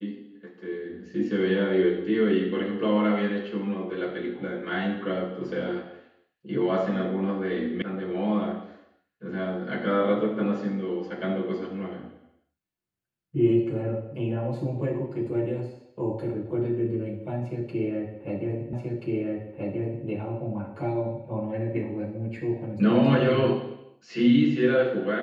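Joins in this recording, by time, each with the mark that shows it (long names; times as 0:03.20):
0:07.82: cut off before it has died away
0:18.73: the same again, the last 1.33 s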